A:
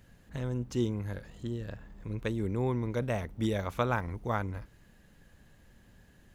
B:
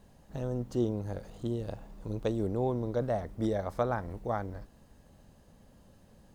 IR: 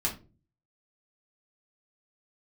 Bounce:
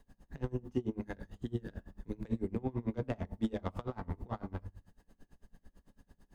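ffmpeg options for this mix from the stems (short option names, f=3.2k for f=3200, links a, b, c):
-filter_complex "[0:a]bandreject=f=49.27:t=h:w=4,bandreject=f=98.54:t=h:w=4,bandreject=f=147.81:t=h:w=4,bandreject=f=197.08:t=h:w=4,bandreject=f=246.35:t=h:w=4,bandreject=f=295.62:t=h:w=4,bandreject=f=344.89:t=h:w=4,bandreject=f=394.16:t=h:w=4,bandreject=f=443.43:t=h:w=4,bandreject=f=492.7:t=h:w=4,bandreject=f=541.97:t=h:w=4,bandreject=f=591.24:t=h:w=4,bandreject=f=640.51:t=h:w=4,bandreject=f=689.78:t=h:w=4,bandreject=f=739.05:t=h:w=4,bandreject=f=788.32:t=h:w=4,bandreject=f=837.59:t=h:w=4,bandreject=f=886.86:t=h:w=4,bandreject=f=936.13:t=h:w=4,bandreject=f=985.4:t=h:w=4,bandreject=f=1.03467k:t=h:w=4,bandreject=f=1.08394k:t=h:w=4,bandreject=f=1.13321k:t=h:w=4,bandreject=f=1.18248k:t=h:w=4,alimiter=level_in=0.5dB:limit=-24dB:level=0:latency=1:release=27,volume=-0.5dB,adynamicsmooth=sensitivity=6:basefreq=1.5k,volume=1.5dB,asplit=2[a][b];[b]volume=-9.5dB[c];[1:a]volume=-6dB,asplit=3[d][e][f];[e]volume=-8dB[g];[f]apad=whole_len=279892[h];[a][h]sidechaingate=range=-33dB:threshold=-59dB:ratio=16:detection=peak[i];[2:a]atrim=start_sample=2205[j];[c][g]amix=inputs=2:normalize=0[k];[k][j]afir=irnorm=-1:irlink=0[l];[i][d][l]amix=inputs=3:normalize=0,equalizer=f=120:t=o:w=0.78:g=-10,acrossover=split=250[m][n];[n]acompressor=threshold=-32dB:ratio=10[o];[m][o]amix=inputs=2:normalize=0,aeval=exprs='val(0)*pow(10,-27*(0.5-0.5*cos(2*PI*9*n/s))/20)':c=same"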